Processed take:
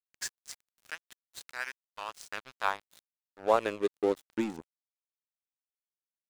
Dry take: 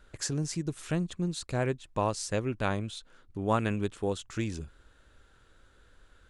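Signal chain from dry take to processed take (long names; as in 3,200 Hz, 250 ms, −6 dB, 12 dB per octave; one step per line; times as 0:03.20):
high-pass filter sweep 1,600 Hz → 250 Hz, 0:01.97–0:04.50
0:02.08–0:02.61: bass and treble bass +13 dB, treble −3 dB
dead-zone distortion −36.5 dBFS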